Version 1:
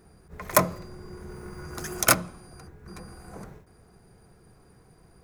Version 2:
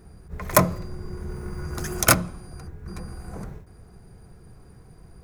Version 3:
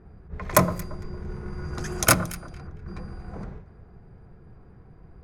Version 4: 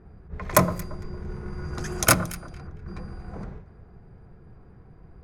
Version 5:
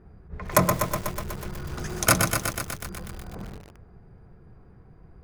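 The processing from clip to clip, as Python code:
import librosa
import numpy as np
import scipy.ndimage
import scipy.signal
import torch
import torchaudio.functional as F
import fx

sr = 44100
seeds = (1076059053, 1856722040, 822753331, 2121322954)

y1 = fx.low_shelf(x, sr, hz=150.0, db=10.5)
y1 = y1 * librosa.db_to_amplitude(2.0)
y2 = fx.echo_alternate(y1, sr, ms=114, hz=1500.0, feedback_pct=53, wet_db=-13.5)
y2 = fx.env_lowpass(y2, sr, base_hz=1900.0, full_db=-21.5)
y2 = y2 * librosa.db_to_amplitude(-1.0)
y3 = y2
y4 = fx.echo_crushed(y3, sr, ms=123, feedback_pct=80, bits=6, wet_db=-5)
y4 = y4 * librosa.db_to_amplitude(-1.5)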